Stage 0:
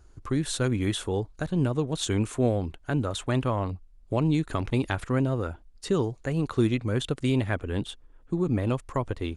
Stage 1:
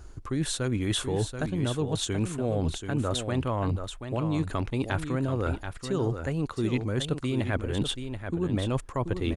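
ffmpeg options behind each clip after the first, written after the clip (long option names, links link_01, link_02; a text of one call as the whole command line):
ffmpeg -i in.wav -af "areverse,acompressor=threshold=-34dB:ratio=10,areverse,aecho=1:1:732:0.398,volume=9dB" out.wav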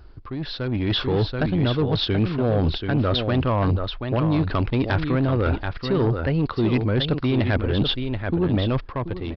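ffmpeg -i in.wav -af "aresample=11025,asoftclip=type=tanh:threshold=-23.5dB,aresample=44100,dynaudnorm=framelen=220:gausssize=7:maxgain=9.5dB" out.wav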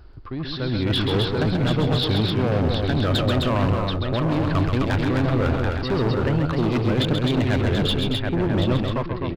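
ffmpeg -i in.wav -filter_complex "[0:a]volume=19dB,asoftclip=hard,volume=-19dB,asplit=2[link_01][link_02];[link_02]aecho=0:1:134.1|259.5:0.501|0.631[link_03];[link_01][link_03]amix=inputs=2:normalize=0" out.wav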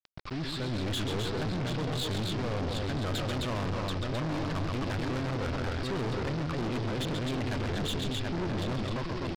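ffmpeg -i in.wav -af "aresample=11025,acrusher=bits=5:mix=0:aa=0.000001,aresample=44100,aeval=exprs='(tanh(25.1*val(0)+0.35)-tanh(0.35))/25.1':channel_layout=same,volume=-2dB" out.wav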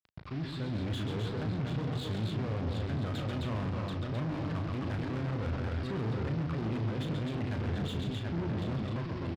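ffmpeg -i in.wav -filter_complex "[0:a]highpass=63,bass=frequency=250:gain=7,treble=frequency=4000:gain=-8,asplit=2[link_01][link_02];[link_02]adelay=36,volume=-8dB[link_03];[link_01][link_03]amix=inputs=2:normalize=0,volume=-6dB" out.wav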